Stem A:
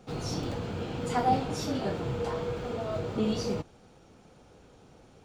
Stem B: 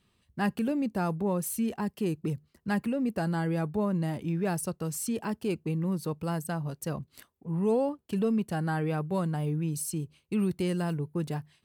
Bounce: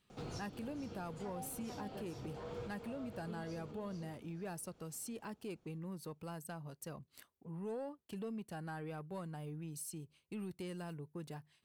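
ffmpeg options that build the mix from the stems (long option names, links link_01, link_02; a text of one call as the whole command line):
ffmpeg -i stem1.wav -i stem2.wav -filter_complex "[0:a]acompressor=threshold=-36dB:ratio=1.5,adelay=100,volume=-1dB,asplit=2[link_01][link_02];[link_02]volume=-13.5dB[link_03];[1:a]lowshelf=frequency=330:gain=-5.5,asoftclip=type=tanh:threshold=-21.5dB,volume=-4.5dB,asplit=2[link_04][link_05];[link_05]apad=whole_len=235602[link_06];[link_01][link_06]sidechaincompress=threshold=-45dB:ratio=4:attack=7:release=353[link_07];[link_03]aecho=0:1:441|882|1323|1764:1|0.24|0.0576|0.0138[link_08];[link_07][link_04][link_08]amix=inputs=3:normalize=0,acompressor=threshold=-54dB:ratio=1.5" out.wav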